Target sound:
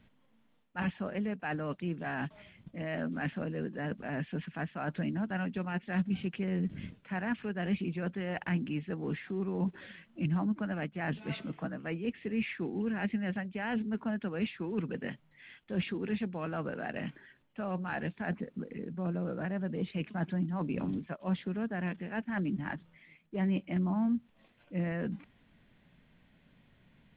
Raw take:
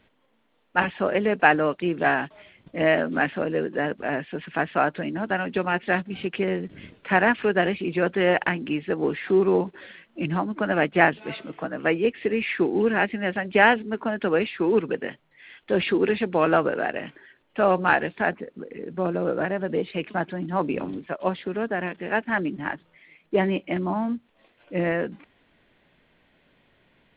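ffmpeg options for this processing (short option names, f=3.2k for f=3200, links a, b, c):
-af "areverse,acompressor=threshold=-28dB:ratio=6,areverse,lowshelf=f=270:t=q:w=1.5:g=8,volume=-6dB"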